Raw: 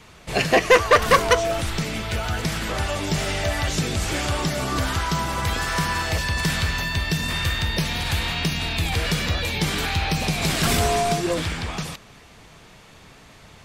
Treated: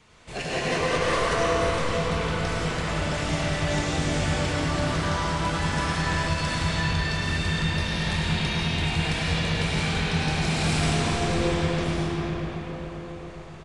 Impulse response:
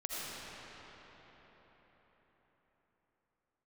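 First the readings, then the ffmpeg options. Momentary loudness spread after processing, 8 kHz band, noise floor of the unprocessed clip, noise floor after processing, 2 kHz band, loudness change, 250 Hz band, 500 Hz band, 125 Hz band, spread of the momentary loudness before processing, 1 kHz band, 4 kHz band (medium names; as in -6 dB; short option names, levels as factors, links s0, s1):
7 LU, -6.0 dB, -48 dBFS, -38 dBFS, -3.5 dB, -3.0 dB, +0.5 dB, -4.0 dB, 0.0 dB, 9 LU, -4.0 dB, -3.5 dB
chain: -filter_complex "[0:a]asoftclip=type=hard:threshold=0.133,asplit=2[s0][s1];[s1]adelay=24,volume=0.251[s2];[s0][s2]amix=inputs=2:normalize=0[s3];[1:a]atrim=start_sample=2205,asetrate=34839,aresample=44100[s4];[s3][s4]afir=irnorm=-1:irlink=0,aresample=22050,aresample=44100,volume=0.447"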